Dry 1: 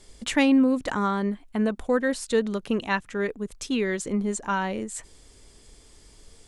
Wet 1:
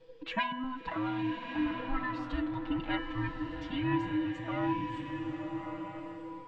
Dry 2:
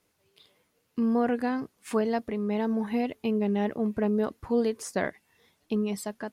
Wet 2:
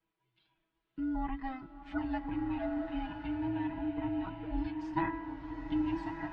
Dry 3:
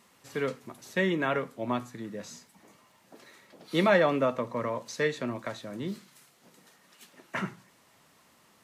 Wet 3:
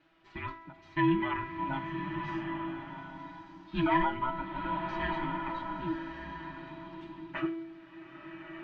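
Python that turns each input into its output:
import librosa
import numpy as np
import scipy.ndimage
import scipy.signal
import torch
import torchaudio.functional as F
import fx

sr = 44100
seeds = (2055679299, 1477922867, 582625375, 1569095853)

y = fx.band_invert(x, sr, width_hz=500)
y = scipy.signal.sosfilt(scipy.signal.butter(4, 3600.0, 'lowpass', fs=sr, output='sos'), y)
y = y + 0.94 * np.pad(y, (int(6.2 * sr / 1000.0), 0))[:len(y)]
y = fx.rider(y, sr, range_db=5, speed_s=2.0)
y = fx.comb_fb(y, sr, f0_hz=330.0, decay_s=0.99, harmonics='all', damping=0.0, mix_pct=80)
y = fx.rev_bloom(y, sr, seeds[0], attack_ms=1270, drr_db=4.0)
y = y * librosa.db_to_amplitude(1.5)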